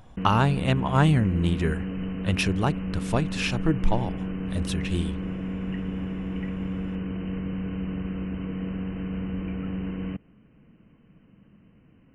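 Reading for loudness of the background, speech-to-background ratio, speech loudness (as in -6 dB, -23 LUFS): -32.0 LUFS, 6.0 dB, -26.0 LUFS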